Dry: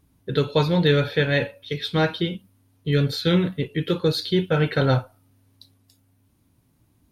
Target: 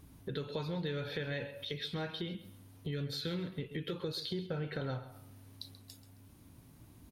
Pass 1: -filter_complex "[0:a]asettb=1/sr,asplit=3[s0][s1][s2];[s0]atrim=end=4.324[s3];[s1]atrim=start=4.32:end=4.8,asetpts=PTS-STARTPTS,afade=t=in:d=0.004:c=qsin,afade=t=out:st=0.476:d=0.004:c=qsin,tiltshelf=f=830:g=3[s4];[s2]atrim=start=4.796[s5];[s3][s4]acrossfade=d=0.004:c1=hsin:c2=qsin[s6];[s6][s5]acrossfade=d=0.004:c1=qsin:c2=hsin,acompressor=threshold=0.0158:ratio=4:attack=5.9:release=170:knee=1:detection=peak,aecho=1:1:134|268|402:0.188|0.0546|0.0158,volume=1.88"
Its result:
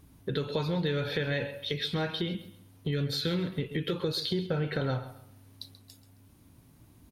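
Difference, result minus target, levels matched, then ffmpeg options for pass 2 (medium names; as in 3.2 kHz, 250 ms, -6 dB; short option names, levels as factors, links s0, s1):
compression: peak gain reduction -7.5 dB
-filter_complex "[0:a]asettb=1/sr,asplit=3[s0][s1][s2];[s0]atrim=end=4.324[s3];[s1]atrim=start=4.32:end=4.8,asetpts=PTS-STARTPTS,afade=t=in:d=0.004:c=qsin,afade=t=out:st=0.476:d=0.004:c=qsin,tiltshelf=f=830:g=3[s4];[s2]atrim=start=4.796[s5];[s3][s4]acrossfade=d=0.004:c1=hsin:c2=qsin[s6];[s6][s5]acrossfade=d=0.004:c1=qsin:c2=hsin,acompressor=threshold=0.00501:ratio=4:attack=5.9:release=170:knee=1:detection=peak,aecho=1:1:134|268|402:0.188|0.0546|0.0158,volume=1.88"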